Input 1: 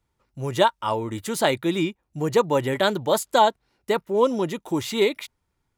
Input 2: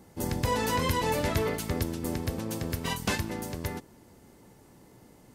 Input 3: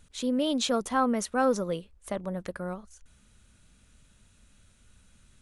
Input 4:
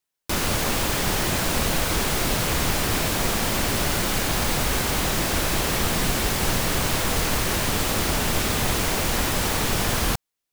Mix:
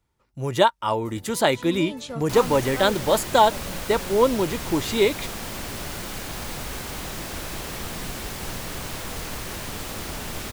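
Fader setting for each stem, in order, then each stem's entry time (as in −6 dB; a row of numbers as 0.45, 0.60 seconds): +1.0, −17.5, −8.0, −9.5 decibels; 0.00, 0.85, 1.40, 2.00 seconds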